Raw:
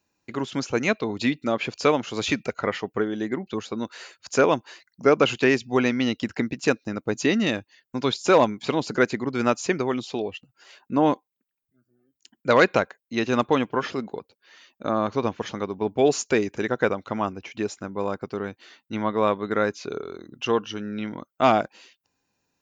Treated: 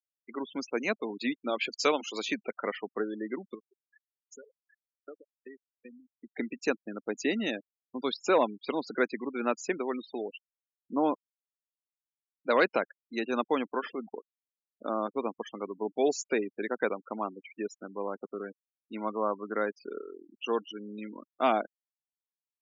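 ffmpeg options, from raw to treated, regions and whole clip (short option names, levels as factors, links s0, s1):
-filter_complex "[0:a]asettb=1/sr,asplit=3[s0][s1][s2];[s0]atrim=end=1.494[s3];[s1]atrim=start=1.49:end=2.22,asetpts=PTS-STARTPTS,afade=t=in:d=0.004:c=qsin,afade=t=out:st=0.726:d=0.004:c=qsin,highshelf=f=2600:g=10.5,bandreject=f=240:w=6.5[s4];[s2]atrim=start=2.216[s5];[s3][s4]acrossfade=d=0.004:c1=hsin:c2=qsin[s6];[s6][s5]acrossfade=d=0.004:c1=qsin:c2=hsin,asettb=1/sr,asplit=3[s7][s8][s9];[s7]atrim=end=3.544[s10];[s8]atrim=start=3.54:end=6.35,asetpts=PTS-STARTPTS,afade=t=in:d=0.004:c=qsin,afade=t=out:st=2.806:d=0.004:c=qsin,acompressor=threshold=0.0224:ratio=6:attack=3.2:release=140:knee=1:detection=peak,aeval=exprs='val(0)*pow(10,-26*if(lt(mod(2.6*n/s,1),2*abs(2.6)/1000),1-mod(2.6*n/s,1)/(2*abs(2.6)/1000),(mod(2.6*n/s,1)-2*abs(2.6)/1000)/(1-2*abs(2.6)/1000))/20)':c=same[s11];[s9]atrim=start=6.346[s12];[s10][s11]acrossfade=d=0.004:c1=hsin:c2=qsin[s13];[s13][s12]acrossfade=d=0.004:c1=qsin:c2=hsin,asettb=1/sr,asplit=3[s14][s15][s16];[s14]atrim=end=19.104[s17];[s15]atrim=start=19.1:end=19.54,asetpts=PTS-STARTPTS,afade=t=in:d=0.004:c=qsin,afade=t=out:st=0.436:d=0.004:c=qsin,lowpass=f=1700:w=0.5412,lowpass=f=1700:w=1.3066,equalizer=f=430:w=2:g=-2.5[s18];[s16]atrim=start=19.536[s19];[s17][s18]acrossfade=d=0.004:c1=hsin:c2=qsin[s20];[s20][s19]acrossfade=d=0.004:c1=qsin:c2=hsin,highpass=f=220:w=0.5412,highpass=f=220:w=1.3066,afftfilt=real='re*gte(hypot(re,im),0.0355)':imag='im*gte(hypot(re,im),0.0355)':win_size=1024:overlap=0.75,volume=0.447"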